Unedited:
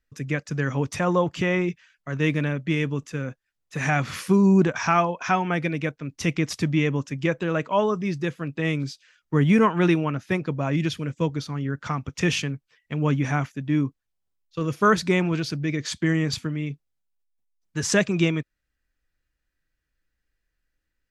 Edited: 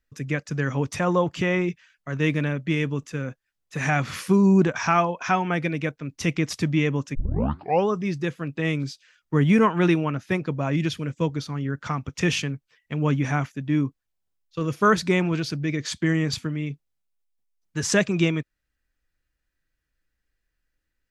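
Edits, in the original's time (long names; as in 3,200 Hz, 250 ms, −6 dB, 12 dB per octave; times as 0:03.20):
0:07.15: tape start 0.73 s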